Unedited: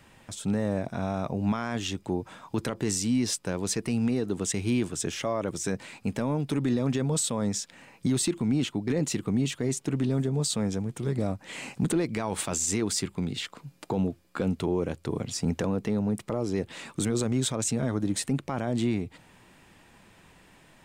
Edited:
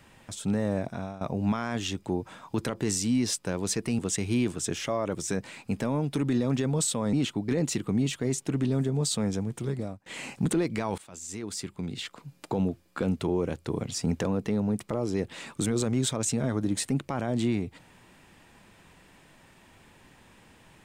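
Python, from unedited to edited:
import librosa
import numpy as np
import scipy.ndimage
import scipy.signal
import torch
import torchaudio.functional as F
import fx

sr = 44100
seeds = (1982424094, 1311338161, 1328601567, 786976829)

y = fx.edit(x, sr, fx.fade_out_to(start_s=0.85, length_s=0.36, floor_db=-17.0),
    fx.cut(start_s=3.99, length_s=0.36),
    fx.cut(start_s=7.49, length_s=1.03),
    fx.fade_out_to(start_s=10.99, length_s=0.46, floor_db=-24.0),
    fx.fade_in_from(start_s=12.37, length_s=1.44, floor_db=-22.5), tone=tone)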